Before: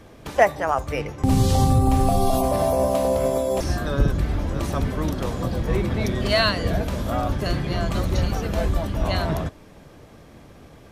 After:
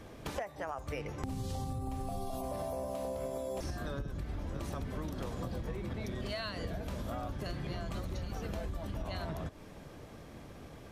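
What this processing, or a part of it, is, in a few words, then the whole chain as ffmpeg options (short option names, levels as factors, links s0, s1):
serial compression, peaks first: -af "acompressor=threshold=0.0447:ratio=6,acompressor=threshold=0.0224:ratio=2.5,volume=0.668"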